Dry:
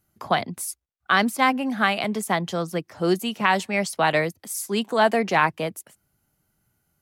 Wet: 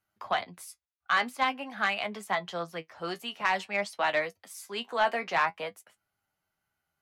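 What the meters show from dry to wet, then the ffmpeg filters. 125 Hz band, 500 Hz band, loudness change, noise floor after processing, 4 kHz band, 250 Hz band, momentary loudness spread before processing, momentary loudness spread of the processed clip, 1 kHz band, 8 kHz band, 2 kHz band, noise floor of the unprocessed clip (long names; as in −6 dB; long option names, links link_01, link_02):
−17.0 dB, −9.0 dB, −7.0 dB, −84 dBFS, −6.5 dB, −16.5 dB, 11 LU, 12 LU, −6.5 dB, −14.0 dB, −5.5 dB, −74 dBFS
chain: -filter_complex "[0:a]acrossover=split=580 4500:gain=0.2 1 0.251[link_01][link_02][link_03];[link_01][link_02][link_03]amix=inputs=3:normalize=0,flanger=delay=9.6:depth=3:regen=43:speed=0.5:shape=sinusoidal,asoftclip=type=tanh:threshold=-15.5dB"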